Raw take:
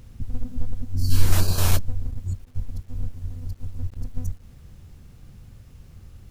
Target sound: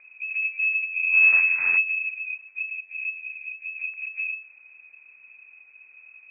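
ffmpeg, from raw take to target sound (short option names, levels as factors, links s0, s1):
-filter_complex "[0:a]lowpass=f=2200:t=q:w=0.5098,lowpass=f=2200:t=q:w=0.6013,lowpass=f=2200:t=q:w=0.9,lowpass=f=2200:t=q:w=2.563,afreqshift=-2600,asettb=1/sr,asplit=3[s0][s1][s2];[s0]atrim=end=2.614[s3];[s1]atrim=start=2.61:end=3.78,asetpts=PTS-STARTPTS,afade=t=in:d=0.004:c=qsin,afade=t=out:st=1.166:d=0.004:c=qsin,equalizer=f=1200:t=o:w=0.74:g=-8[s4];[s2]atrim=start=3.776[s5];[s3][s4]acrossfade=d=0.004:c1=hsin:c2=qsin[s6];[s6][s5]acrossfade=d=0.004:c1=qsin:c2=hsin,volume=0.501"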